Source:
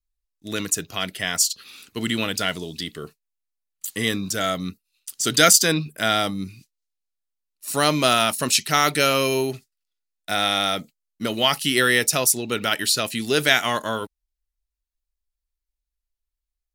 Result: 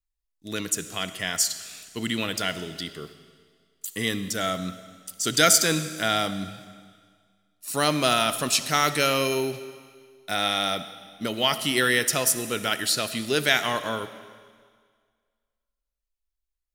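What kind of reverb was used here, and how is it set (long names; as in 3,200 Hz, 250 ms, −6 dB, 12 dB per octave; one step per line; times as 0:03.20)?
comb and all-pass reverb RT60 1.8 s, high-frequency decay 1×, pre-delay 20 ms, DRR 12 dB
level −3.5 dB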